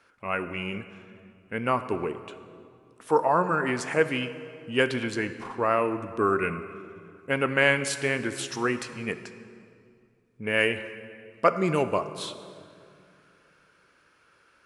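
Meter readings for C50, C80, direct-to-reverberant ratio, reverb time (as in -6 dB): 11.5 dB, 12.5 dB, 10.0 dB, 2.3 s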